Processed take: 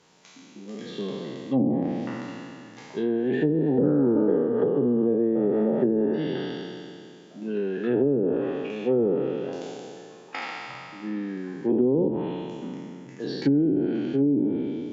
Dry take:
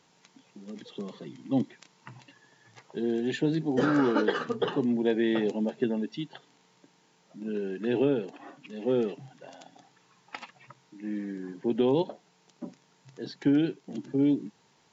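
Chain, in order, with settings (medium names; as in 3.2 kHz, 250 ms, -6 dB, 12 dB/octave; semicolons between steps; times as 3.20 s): spectral sustain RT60 2.55 s; 12.08–13.20 s: graphic EQ 500/1000/2000/4000 Hz -10/-4/+9/-10 dB; low-pass that closes with the level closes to 400 Hz, closed at -19 dBFS; peaking EQ 450 Hz +2.5 dB; trim +1.5 dB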